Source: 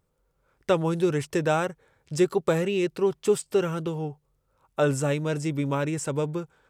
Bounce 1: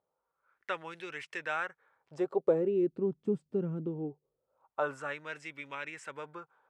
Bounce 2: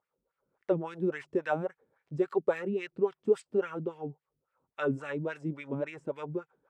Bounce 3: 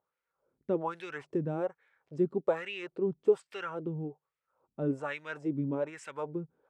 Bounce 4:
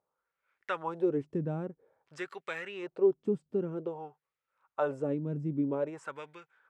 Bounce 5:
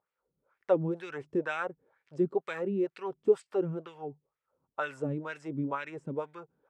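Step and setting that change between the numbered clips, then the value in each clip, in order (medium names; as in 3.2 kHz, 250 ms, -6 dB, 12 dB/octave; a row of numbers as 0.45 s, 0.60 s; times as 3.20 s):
wah-wah, rate: 0.22 Hz, 3.6 Hz, 1.2 Hz, 0.51 Hz, 2.1 Hz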